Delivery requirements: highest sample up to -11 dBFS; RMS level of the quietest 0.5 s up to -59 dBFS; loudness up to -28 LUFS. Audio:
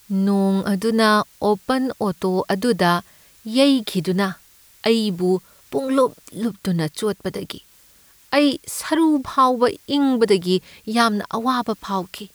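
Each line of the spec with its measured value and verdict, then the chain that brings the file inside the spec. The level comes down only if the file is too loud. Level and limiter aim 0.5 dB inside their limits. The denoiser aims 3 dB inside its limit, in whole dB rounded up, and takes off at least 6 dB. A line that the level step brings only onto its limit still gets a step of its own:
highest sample -5.5 dBFS: fail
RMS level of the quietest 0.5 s -52 dBFS: fail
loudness -20.5 LUFS: fail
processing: trim -8 dB

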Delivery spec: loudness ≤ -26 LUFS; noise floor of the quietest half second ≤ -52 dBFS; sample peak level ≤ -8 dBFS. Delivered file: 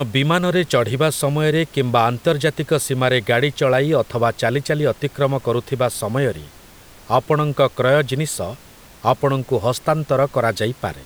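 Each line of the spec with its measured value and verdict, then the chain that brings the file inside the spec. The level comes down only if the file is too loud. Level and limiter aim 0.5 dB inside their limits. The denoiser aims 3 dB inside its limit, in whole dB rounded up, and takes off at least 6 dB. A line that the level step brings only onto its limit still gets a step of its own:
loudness -19.0 LUFS: fail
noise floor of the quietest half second -44 dBFS: fail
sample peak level -2.0 dBFS: fail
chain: noise reduction 6 dB, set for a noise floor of -44 dBFS; trim -7.5 dB

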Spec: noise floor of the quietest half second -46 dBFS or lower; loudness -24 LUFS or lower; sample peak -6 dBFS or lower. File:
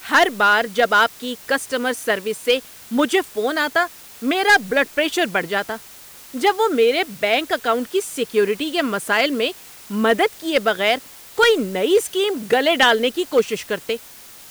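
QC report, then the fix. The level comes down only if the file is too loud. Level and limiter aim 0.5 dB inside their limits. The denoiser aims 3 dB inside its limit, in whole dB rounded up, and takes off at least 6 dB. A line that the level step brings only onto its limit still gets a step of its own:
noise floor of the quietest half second -42 dBFS: fail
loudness -19.0 LUFS: fail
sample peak -7.0 dBFS: pass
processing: trim -5.5 dB

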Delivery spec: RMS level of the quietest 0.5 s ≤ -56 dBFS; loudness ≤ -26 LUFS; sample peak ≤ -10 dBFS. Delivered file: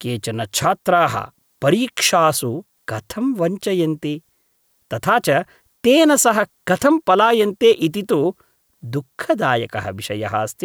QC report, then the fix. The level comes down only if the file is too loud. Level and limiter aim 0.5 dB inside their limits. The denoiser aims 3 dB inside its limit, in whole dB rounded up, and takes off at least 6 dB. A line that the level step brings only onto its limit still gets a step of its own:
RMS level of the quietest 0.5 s -64 dBFS: pass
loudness -18.0 LUFS: fail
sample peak -3.5 dBFS: fail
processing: trim -8.5 dB

